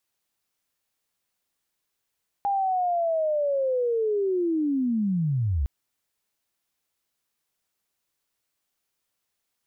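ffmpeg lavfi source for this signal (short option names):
-f lavfi -i "aevalsrc='0.0841*sin(2*PI*(810*t-749*t*t/(2*3.21)))':d=3.21:s=44100"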